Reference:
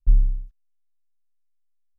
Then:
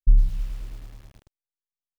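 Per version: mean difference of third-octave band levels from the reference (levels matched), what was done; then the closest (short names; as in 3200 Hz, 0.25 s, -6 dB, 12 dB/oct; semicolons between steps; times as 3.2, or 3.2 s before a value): 11.5 dB: expander -34 dBFS; lo-fi delay 0.107 s, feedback 80%, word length 7-bit, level -10.5 dB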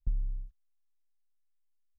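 3.0 dB: bell 71 Hz +7 dB 1.2 oct; compressor 6:1, threshold -22 dBFS, peak gain reduction 13 dB; gain -5.5 dB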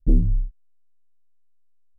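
5.0 dB: Wiener smoothing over 41 samples; in parallel at -11 dB: sine folder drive 17 dB, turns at -6.5 dBFS; on the sum: gain -2 dB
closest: second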